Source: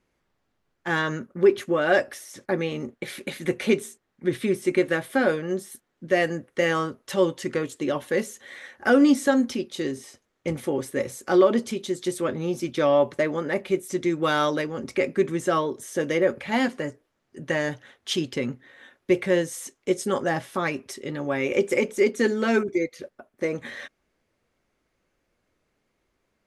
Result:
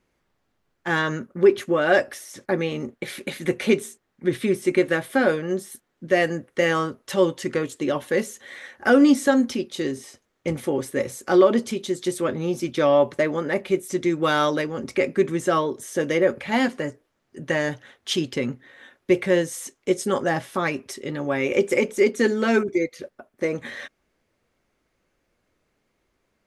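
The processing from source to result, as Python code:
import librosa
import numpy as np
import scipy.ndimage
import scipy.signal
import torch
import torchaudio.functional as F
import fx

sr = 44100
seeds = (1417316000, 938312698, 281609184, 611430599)

y = x * librosa.db_to_amplitude(2.0)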